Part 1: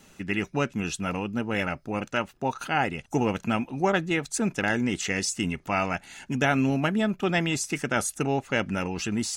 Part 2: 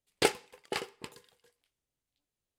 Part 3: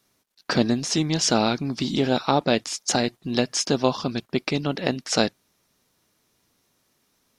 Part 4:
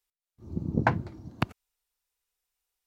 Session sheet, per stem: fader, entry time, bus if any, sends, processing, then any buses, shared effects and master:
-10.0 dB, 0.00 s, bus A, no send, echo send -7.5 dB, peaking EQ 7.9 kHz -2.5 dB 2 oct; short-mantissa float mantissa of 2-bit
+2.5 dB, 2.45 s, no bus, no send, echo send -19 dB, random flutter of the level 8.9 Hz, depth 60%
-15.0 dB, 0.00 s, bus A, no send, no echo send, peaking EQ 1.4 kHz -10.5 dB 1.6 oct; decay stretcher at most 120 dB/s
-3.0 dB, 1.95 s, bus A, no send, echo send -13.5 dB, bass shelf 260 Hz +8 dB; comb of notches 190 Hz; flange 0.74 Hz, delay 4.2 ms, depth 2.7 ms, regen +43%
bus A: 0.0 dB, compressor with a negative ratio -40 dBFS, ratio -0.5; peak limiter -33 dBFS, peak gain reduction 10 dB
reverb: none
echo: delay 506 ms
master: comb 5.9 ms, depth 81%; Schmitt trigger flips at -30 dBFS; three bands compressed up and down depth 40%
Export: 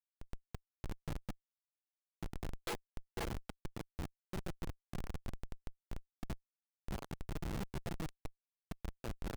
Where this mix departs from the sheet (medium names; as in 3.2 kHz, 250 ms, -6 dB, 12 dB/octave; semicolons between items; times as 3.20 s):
stem 3: missing peaking EQ 1.4 kHz -10.5 dB 1.6 oct; stem 4: entry 1.95 s -> 1.05 s; master: missing three bands compressed up and down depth 40%